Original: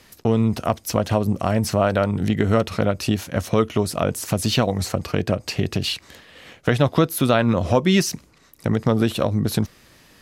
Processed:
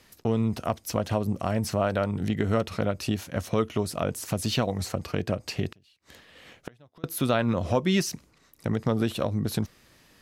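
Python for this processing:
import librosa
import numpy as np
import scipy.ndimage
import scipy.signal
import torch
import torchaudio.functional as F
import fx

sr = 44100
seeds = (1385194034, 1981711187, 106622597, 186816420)

y = fx.gate_flip(x, sr, shuts_db=-19.0, range_db=-31, at=(5.69, 7.04))
y = y * librosa.db_to_amplitude(-6.5)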